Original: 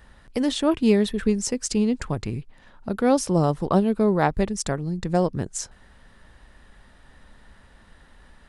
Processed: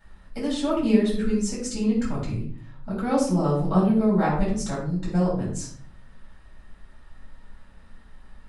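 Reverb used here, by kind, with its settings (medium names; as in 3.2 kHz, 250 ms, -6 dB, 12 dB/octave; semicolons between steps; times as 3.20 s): simulated room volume 590 m³, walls furnished, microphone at 7.6 m; trim -13 dB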